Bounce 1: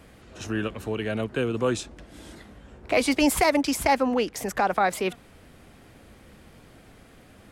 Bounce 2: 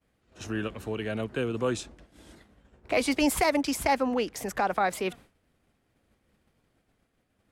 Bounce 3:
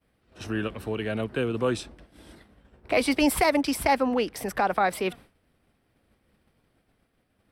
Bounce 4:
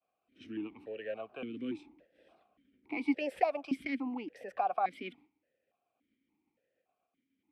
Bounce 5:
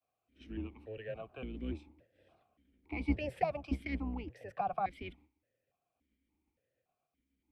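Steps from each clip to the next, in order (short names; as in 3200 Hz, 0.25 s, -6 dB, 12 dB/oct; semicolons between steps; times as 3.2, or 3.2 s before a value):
expander -39 dBFS; gain -3.5 dB
bell 6800 Hz -14 dB 0.2 oct; gain +2.5 dB
vowel sequencer 3.5 Hz; gain -1 dB
octaver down 2 oct, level +1 dB; gain -3.5 dB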